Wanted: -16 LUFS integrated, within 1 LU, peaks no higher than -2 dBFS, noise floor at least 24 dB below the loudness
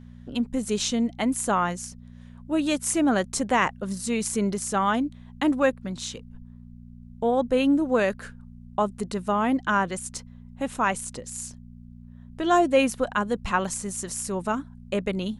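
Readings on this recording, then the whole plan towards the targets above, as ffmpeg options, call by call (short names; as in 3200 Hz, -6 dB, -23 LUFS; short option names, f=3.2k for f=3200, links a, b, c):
hum 60 Hz; harmonics up to 240 Hz; hum level -42 dBFS; loudness -25.5 LUFS; peak -8.0 dBFS; loudness target -16.0 LUFS
-> -af "bandreject=f=60:t=h:w=4,bandreject=f=120:t=h:w=4,bandreject=f=180:t=h:w=4,bandreject=f=240:t=h:w=4"
-af "volume=9.5dB,alimiter=limit=-2dB:level=0:latency=1"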